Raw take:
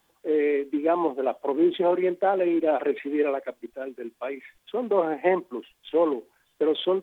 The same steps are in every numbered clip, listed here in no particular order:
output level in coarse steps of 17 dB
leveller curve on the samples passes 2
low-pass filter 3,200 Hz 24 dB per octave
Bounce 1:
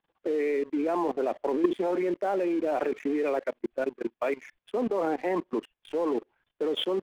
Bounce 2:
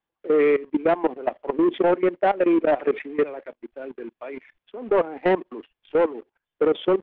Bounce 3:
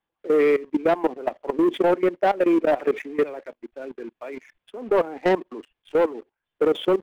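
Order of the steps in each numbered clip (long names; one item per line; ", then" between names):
output level in coarse steps, then low-pass filter, then leveller curve on the samples
leveller curve on the samples, then output level in coarse steps, then low-pass filter
low-pass filter, then leveller curve on the samples, then output level in coarse steps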